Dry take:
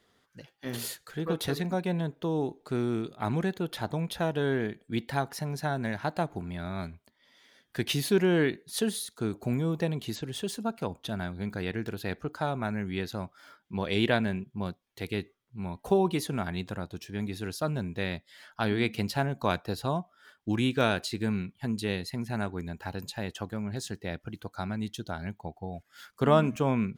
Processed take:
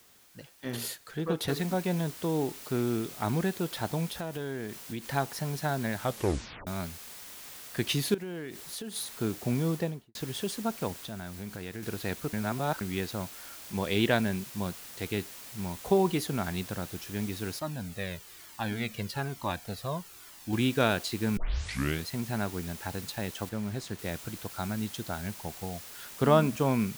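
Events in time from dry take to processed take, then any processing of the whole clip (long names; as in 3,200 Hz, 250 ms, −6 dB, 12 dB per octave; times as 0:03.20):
0:01.48: noise floor change −60 dB −46 dB
0:04.07–0:05.07: downward compressor 3 to 1, threshold −34 dBFS
0:05.97: tape stop 0.70 s
0:08.14–0:08.96: downward compressor 10 to 1, threshold −35 dBFS
0:09.71–0:10.15: fade out and dull
0:10.93–0:11.83: downward compressor 2 to 1, threshold −40 dBFS
0:12.33–0:12.81: reverse
0:17.59–0:20.53: flanger whose copies keep moving one way falling 1.1 Hz
0:21.37: tape start 0.69 s
0:23.49–0:23.99: high-shelf EQ 4,000 Hz −7.5 dB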